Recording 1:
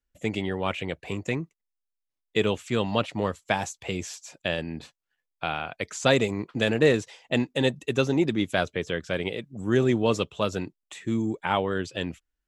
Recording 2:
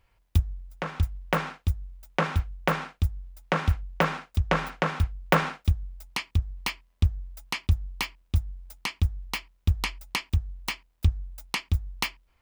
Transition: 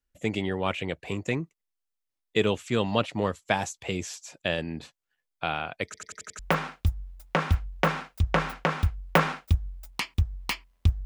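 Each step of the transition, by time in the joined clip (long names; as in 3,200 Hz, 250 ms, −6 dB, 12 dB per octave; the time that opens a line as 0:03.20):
recording 1
0:05.85: stutter in place 0.09 s, 6 plays
0:06.39: continue with recording 2 from 0:02.56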